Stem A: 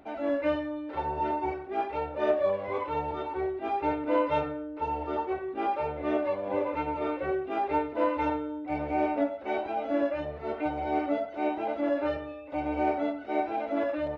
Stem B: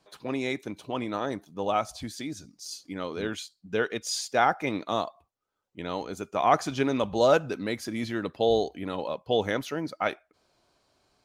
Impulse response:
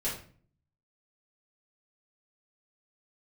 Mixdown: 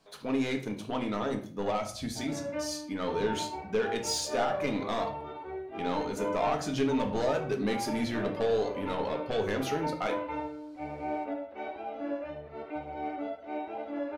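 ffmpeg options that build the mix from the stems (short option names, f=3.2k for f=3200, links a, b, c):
-filter_complex "[0:a]adelay=2100,volume=-9dB,asplit=3[a][b][c];[b]volume=-14.5dB[d];[c]volume=-7.5dB[e];[1:a]acompressor=threshold=-25dB:ratio=6,asoftclip=type=tanh:threshold=-26dB,volume=-2dB,asplit=2[f][g];[g]volume=-5.5dB[h];[2:a]atrim=start_sample=2205[i];[d][h]amix=inputs=2:normalize=0[j];[j][i]afir=irnorm=-1:irlink=0[k];[e]aecho=0:1:76:1[l];[a][f][k][l]amix=inputs=4:normalize=0"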